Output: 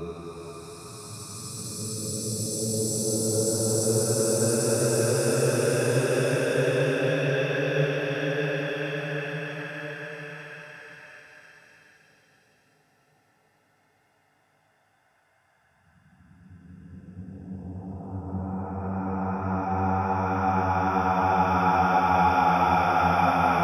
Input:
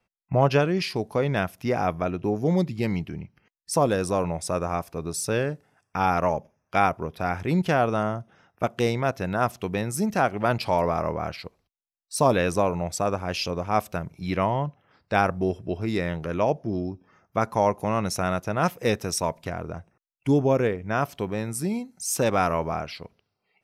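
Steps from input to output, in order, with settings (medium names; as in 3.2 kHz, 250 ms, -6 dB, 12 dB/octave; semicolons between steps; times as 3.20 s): phase dispersion highs, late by 137 ms, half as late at 740 Hz; Paulstretch 23×, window 0.25 s, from 5.17 s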